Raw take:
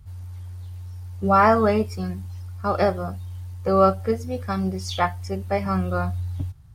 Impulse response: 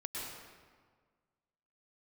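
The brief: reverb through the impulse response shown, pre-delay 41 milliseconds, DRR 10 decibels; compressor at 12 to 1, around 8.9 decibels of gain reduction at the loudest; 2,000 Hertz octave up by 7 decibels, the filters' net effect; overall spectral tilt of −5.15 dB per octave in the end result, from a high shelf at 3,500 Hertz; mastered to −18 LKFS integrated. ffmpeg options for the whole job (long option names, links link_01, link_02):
-filter_complex "[0:a]equalizer=frequency=2000:width_type=o:gain=6.5,highshelf=frequency=3500:gain=8.5,acompressor=threshold=-18dB:ratio=12,asplit=2[link_01][link_02];[1:a]atrim=start_sample=2205,adelay=41[link_03];[link_02][link_03]afir=irnorm=-1:irlink=0,volume=-11.5dB[link_04];[link_01][link_04]amix=inputs=2:normalize=0,volume=7.5dB"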